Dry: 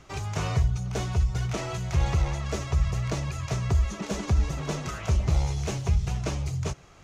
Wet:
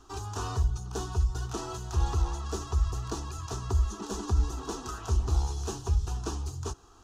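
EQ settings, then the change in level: static phaser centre 580 Hz, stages 6; 0.0 dB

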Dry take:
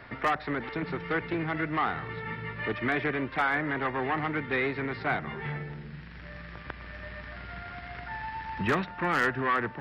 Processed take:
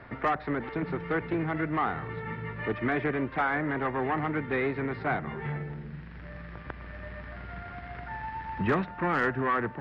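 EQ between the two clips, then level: low-pass 1.3 kHz 6 dB/octave; +2.0 dB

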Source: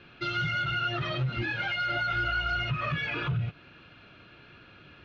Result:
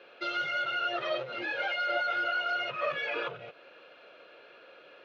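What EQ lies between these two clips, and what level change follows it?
resonant high-pass 520 Hz, resonance Q 4.9; -2.5 dB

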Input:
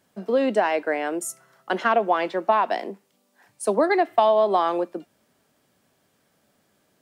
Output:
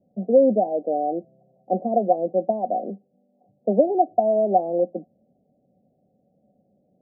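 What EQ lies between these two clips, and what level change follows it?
rippled Chebyshev low-pass 770 Hz, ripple 9 dB; +7.5 dB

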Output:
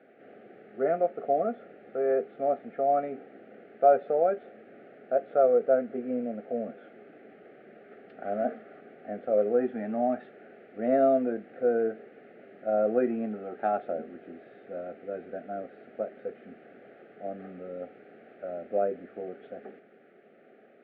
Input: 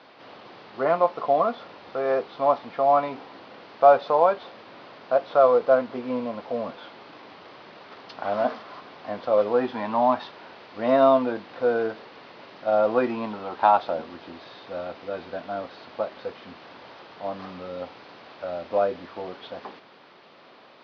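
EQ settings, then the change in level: Butterworth band-stop 1 kHz, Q 1.1; cabinet simulation 130–2000 Hz, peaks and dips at 220 Hz +7 dB, 410 Hz +8 dB, 740 Hz +7 dB, 1.2 kHz +4 dB; -6.0 dB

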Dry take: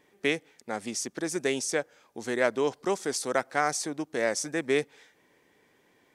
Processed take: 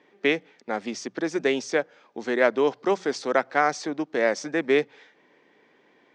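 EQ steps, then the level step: distance through air 110 m; three-band isolator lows -24 dB, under 150 Hz, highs -20 dB, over 6.8 kHz; hum notches 60/120/180 Hz; +5.5 dB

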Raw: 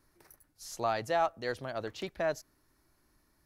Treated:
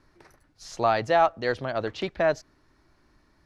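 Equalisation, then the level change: low-pass 4.5 kHz 12 dB/octave; +8.5 dB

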